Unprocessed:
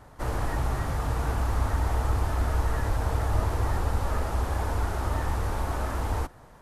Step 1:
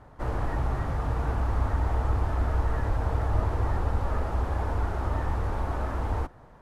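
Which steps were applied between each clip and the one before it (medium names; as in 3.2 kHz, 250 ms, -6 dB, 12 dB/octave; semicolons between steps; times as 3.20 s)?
low-pass 1.8 kHz 6 dB/octave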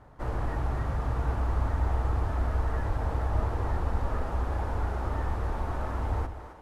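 two-band feedback delay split 300 Hz, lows 82 ms, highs 267 ms, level -10 dB; trim -2.5 dB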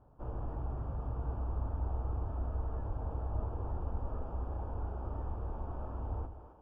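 boxcar filter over 22 samples; trim -8 dB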